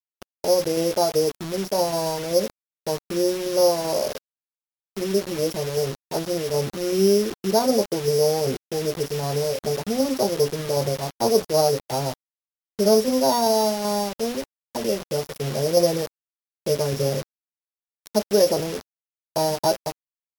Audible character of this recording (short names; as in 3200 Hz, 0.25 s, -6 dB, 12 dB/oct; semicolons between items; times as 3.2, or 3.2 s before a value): a buzz of ramps at a fixed pitch in blocks of 8 samples; tremolo saw down 2.6 Hz, depth 35%; a quantiser's noise floor 6-bit, dither none; MP3